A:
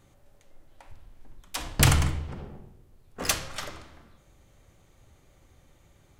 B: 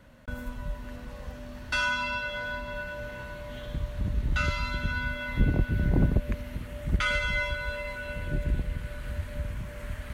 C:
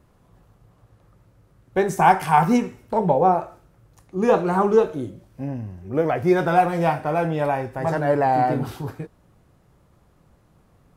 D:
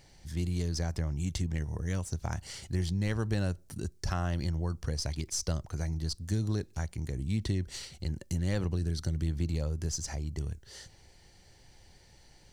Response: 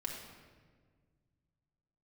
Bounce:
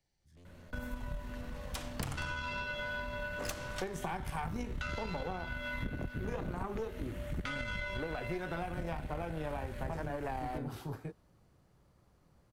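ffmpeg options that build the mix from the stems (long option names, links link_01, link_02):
-filter_complex "[0:a]agate=range=-20dB:threshold=-54dB:ratio=16:detection=peak,adelay=200,volume=-3dB[link_01];[1:a]adelay=450,volume=2dB[link_02];[2:a]adelay=2050,volume=-5dB[link_03];[3:a]acrossover=split=3800[link_04][link_05];[link_05]acompressor=threshold=-49dB:ratio=4:attack=1:release=60[link_06];[link_04][link_06]amix=inputs=2:normalize=0,aeval=exprs='0.0376*(abs(mod(val(0)/0.0376+3,4)-2)-1)':channel_layout=same,volume=-19dB[link_07];[link_01][link_02][link_03][link_07]amix=inputs=4:normalize=0,acrossover=split=140|380|1400[link_08][link_09][link_10][link_11];[link_08]acompressor=threshold=-28dB:ratio=4[link_12];[link_09]acompressor=threshold=-29dB:ratio=4[link_13];[link_10]acompressor=threshold=-29dB:ratio=4[link_14];[link_11]acompressor=threshold=-31dB:ratio=4[link_15];[link_12][link_13][link_14][link_15]amix=inputs=4:normalize=0,aeval=exprs='(tanh(6.31*val(0)+0.75)-tanh(0.75))/6.31':channel_layout=same,acompressor=threshold=-34dB:ratio=6"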